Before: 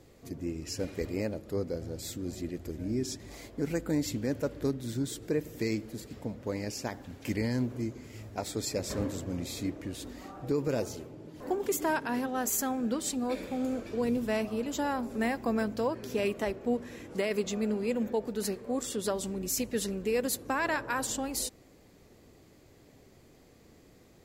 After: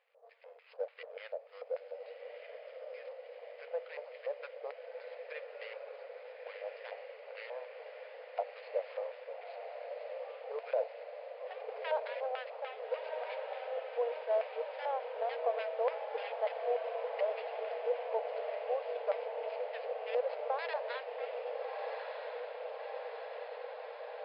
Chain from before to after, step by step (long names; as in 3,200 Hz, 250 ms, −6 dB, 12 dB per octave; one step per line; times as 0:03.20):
running median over 25 samples
auto-filter band-pass square 3.4 Hz 650–2,300 Hz
linear-phase brick-wall band-pass 440–5,200 Hz
feedback delay with all-pass diffusion 1,293 ms, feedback 75%, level −5 dB
level +4 dB